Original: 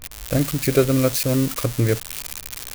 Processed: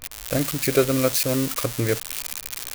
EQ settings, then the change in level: low shelf 270 Hz -9 dB; +1.0 dB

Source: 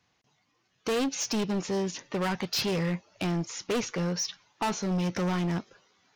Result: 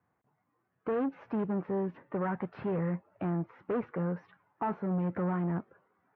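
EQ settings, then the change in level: HPF 69 Hz; LPF 1600 Hz 24 dB/oct; air absorption 77 m; -2.5 dB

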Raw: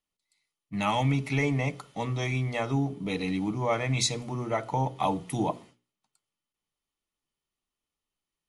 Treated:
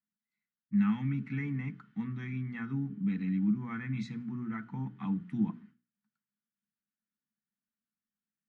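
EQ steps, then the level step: double band-pass 580 Hz, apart 2.9 oct; air absorption 54 m; low shelf 350 Hz +9.5 dB; +1.5 dB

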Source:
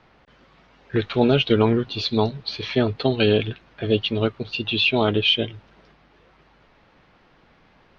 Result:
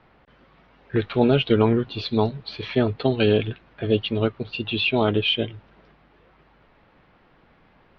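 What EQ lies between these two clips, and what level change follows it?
air absorption 190 m; 0.0 dB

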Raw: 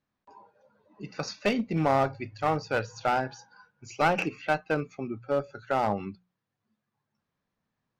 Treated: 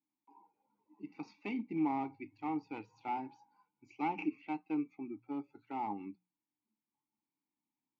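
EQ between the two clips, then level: vowel filter u; +1.0 dB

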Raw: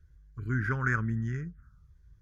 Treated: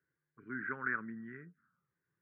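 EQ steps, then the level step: HPF 210 Hz 24 dB/oct; ladder low-pass 2500 Hz, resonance 40%; air absorption 320 m; +1.0 dB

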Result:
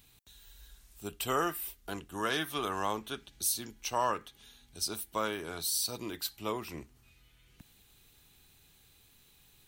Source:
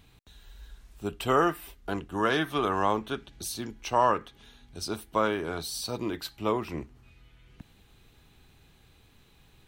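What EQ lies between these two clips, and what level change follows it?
pre-emphasis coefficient 0.8; +5.5 dB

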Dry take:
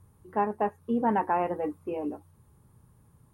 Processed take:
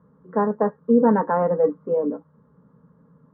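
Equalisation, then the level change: speaker cabinet 130–2500 Hz, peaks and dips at 170 Hz +7 dB, 280 Hz +9 dB, 480 Hz +8 dB, 720 Hz +9 dB, 1400 Hz +3 dB; low shelf 170 Hz +5 dB; fixed phaser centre 500 Hz, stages 8; +5.0 dB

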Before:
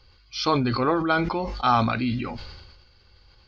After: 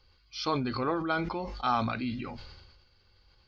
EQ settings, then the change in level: notches 60/120 Hz; -7.5 dB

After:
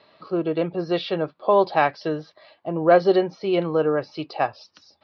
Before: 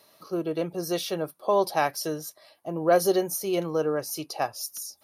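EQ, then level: steep low-pass 4900 Hz 48 dB/oct; air absorption 320 m; high shelf 2100 Hz +7.5 dB; +5.5 dB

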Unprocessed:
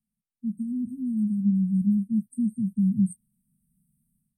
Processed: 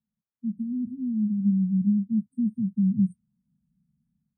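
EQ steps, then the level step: polynomial smoothing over 41 samples; HPF 52 Hz; 0.0 dB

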